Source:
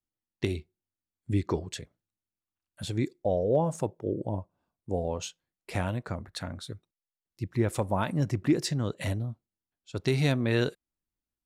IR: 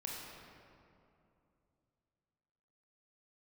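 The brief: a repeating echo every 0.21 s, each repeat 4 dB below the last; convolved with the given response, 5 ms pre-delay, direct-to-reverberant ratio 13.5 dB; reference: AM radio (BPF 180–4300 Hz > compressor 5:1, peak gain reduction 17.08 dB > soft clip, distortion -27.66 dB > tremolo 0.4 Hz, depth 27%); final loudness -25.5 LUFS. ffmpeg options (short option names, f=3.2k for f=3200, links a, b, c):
-filter_complex "[0:a]aecho=1:1:210|420|630|840|1050|1260|1470|1680|1890:0.631|0.398|0.25|0.158|0.0994|0.0626|0.0394|0.0249|0.0157,asplit=2[a][b];[1:a]atrim=start_sample=2205,adelay=5[c];[b][c]afir=irnorm=-1:irlink=0,volume=-13.5dB[d];[a][d]amix=inputs=2:normalize=0,highpass=180,lowpass=4.3k,acompressor=threshold=-39dB:ratio=5,asoftclip=threshold=-26.5dB,tremolo=f=0.4:d=0.27,volume=19dB"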